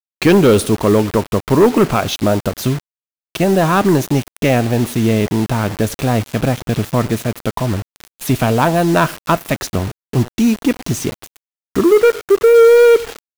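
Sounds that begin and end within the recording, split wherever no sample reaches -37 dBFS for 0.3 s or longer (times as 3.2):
3.35–11.37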